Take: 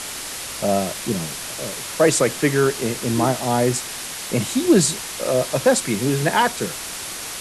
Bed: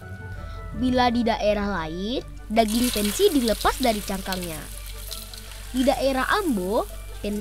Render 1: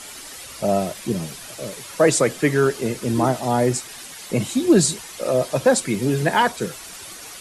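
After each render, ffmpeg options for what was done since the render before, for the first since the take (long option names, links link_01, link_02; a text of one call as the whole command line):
ffmpeg -i in.wav -af "afftdn=noise_reduction=10:noise_floor=-31" out.wav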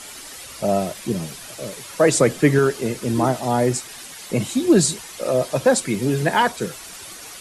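ffmpeg -i in.wav -filter_complex "[0:a]asettb=1/sr,asplit=3[link_01][link_02][link_03];[link_01]atrim=end=2.144[link_04];[link_02]atrim=start=2.14:end=2.59,asetpts=PTS-STARTPTS,afade=type=in:duration=0.004:curve=qsin,afade=type=out:start_time=0.446:duration=0.004:curve=qsin,lowshelf=frequency=400:gain=6[link_05];[link_03]atrim=start=2.586[link_06];[link_04][link_05]acrossfade=duration=0.004:curve1=hsin:curve2=qsin[link_07];[link_07][link_06]acrossfade=duration=0.004:curve1=qsin:curve2=hsin" out.wav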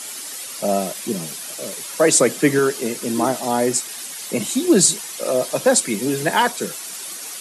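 ffmpeg -i in.wav -af "highpass=frequency=170:width=0.5412,highpass=frequency=170:width=1.3066,highshelf=frequency=4800:gain=9" out.wav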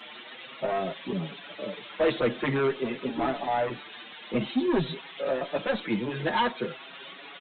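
ffmpeg -i in.wav -filter_complex "[0:a]aresample=8000,asoftclip=type=tanh:threshold=-18dB,aresample=44100,asplit=2[link_01][link_02];[link_02]adelay=6.2,afreqshift=0.49[link_03];[link_01][link_03]amix=inputs=2:normalize=1" out.wav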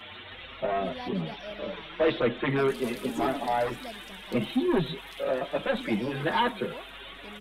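ffmpeg -i in.wav -i bed.wav -filter_complex "[1:a]volume=-20dB[link_01];[0:a][link_01]amix=inputs=2:normalize=0" out.wav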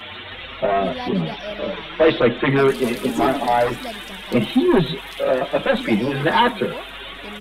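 ffmpeg -i in.wav -af "volume=9.5dB" out.wav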